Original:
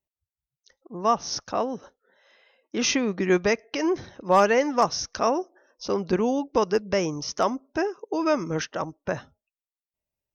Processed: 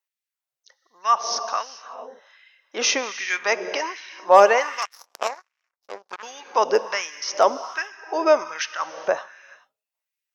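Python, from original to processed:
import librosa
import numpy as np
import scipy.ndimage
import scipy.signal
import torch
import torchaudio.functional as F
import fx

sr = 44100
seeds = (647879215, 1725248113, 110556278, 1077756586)

y = fx.rev_gated(x, sr, seeds[0], gate_ms=460, shape='flat', drr_db=11.0)
y = fx.power_curve(y, sr, exponent=3.0, at=(4.85, 6.23))
y = fx.filter_lfo_highpass(y, sr, shape='sine', hz=1.3, low_hz=510.0, high_hz=2100.0, q=1.6)
y = y * librosa.db_to_amplitude(3.5)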